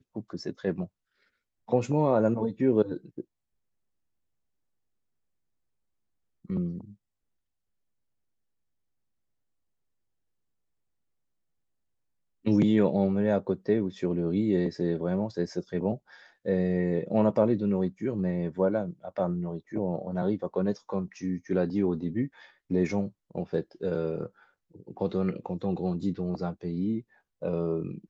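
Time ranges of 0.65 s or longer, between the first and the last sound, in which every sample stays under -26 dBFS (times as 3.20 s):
0.84–1.72 s
3.20–6.50 s
6.66–12.46 s
24.26–25.01 s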